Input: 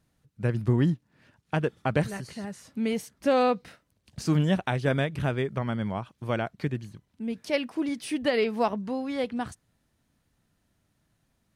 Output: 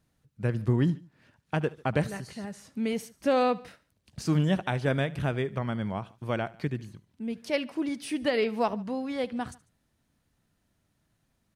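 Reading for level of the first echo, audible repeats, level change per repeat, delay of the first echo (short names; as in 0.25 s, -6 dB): -21.0 dB, 2, -4.5 dB, 73 ms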